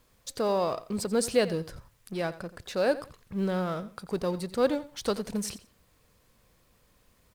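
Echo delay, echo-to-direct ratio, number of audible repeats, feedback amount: 87 ms, -16.0 dB, 2, 22%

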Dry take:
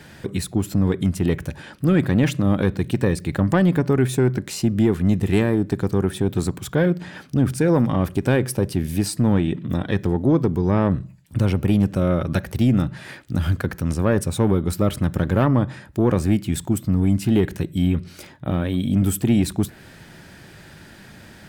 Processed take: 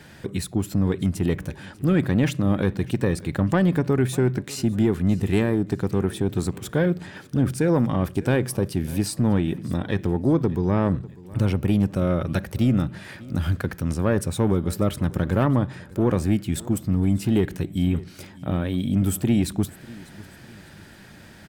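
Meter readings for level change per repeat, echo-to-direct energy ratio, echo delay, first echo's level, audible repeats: -8.5 dB, -20.5 dB, 0.597 s, -21.0 dB, 2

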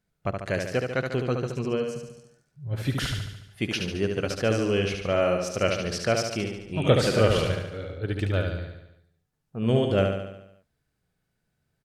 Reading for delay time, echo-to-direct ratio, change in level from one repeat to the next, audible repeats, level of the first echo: 72 ms, -3.5 dB, -5.0 dB, 7, -5.0 dB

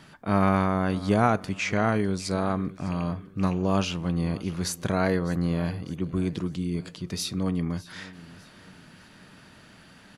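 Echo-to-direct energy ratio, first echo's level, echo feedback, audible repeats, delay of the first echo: -18.5 dB, -19.5 dB, 41%, 3, 0.604 s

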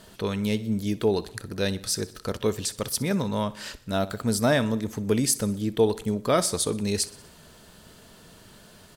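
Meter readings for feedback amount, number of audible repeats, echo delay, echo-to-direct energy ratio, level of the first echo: 57%, 4, 62 ms, -17.5 dB, -19.0 dB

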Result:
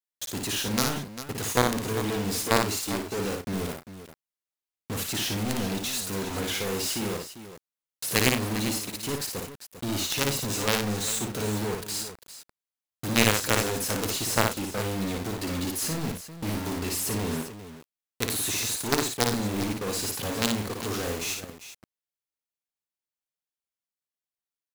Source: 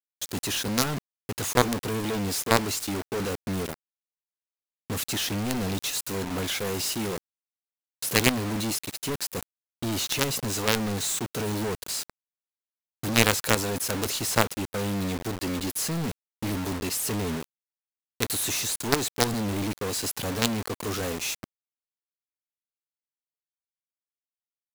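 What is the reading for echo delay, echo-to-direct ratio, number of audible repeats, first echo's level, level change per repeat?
57 ms, -3.0 dB, 3, -4.0 dB, no steady repeat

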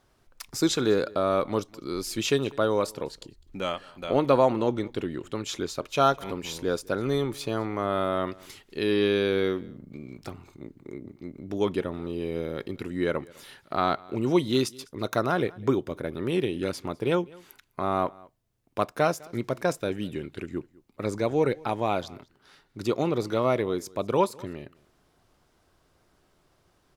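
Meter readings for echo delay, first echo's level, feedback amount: 0.203 s, -24.0 dB, no steady repeat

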